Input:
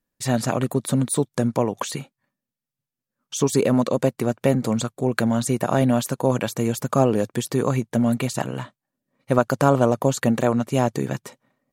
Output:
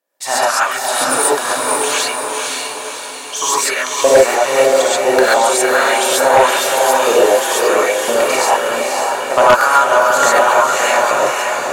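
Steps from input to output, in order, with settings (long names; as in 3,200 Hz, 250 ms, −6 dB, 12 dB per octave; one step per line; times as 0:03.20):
auto-filter high-pass saw up 0.99 Hz 520–2,900 Hz
on a send: feedback delay with all-pass diffusion 542 ms, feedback 54%, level −3 dB
on the sum: reverb whose tail is shaped and stops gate 160 ms rising, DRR −7.5 dB
harmonic generator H 5 −7 dB, 7 −17 dB, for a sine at 2.5 dBFS
level −3 dB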